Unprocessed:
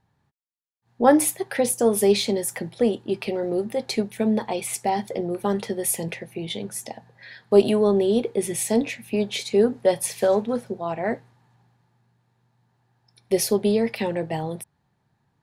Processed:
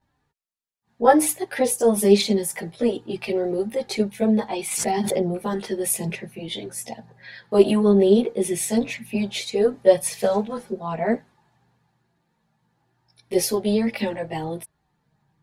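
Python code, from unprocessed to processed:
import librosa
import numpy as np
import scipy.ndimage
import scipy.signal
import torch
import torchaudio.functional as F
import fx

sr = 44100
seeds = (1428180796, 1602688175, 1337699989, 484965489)

y = fx.chorus_voices(x, sr, voices=4, hz=0.17, base_ms=16, depth_ms=3.4, mix_pct=70)
y = fx.pre_swell(y, sr, db_per_s=33.0, at=(4.71, 5.41))
y = y * 10.0 ** (3.0 / 20.0)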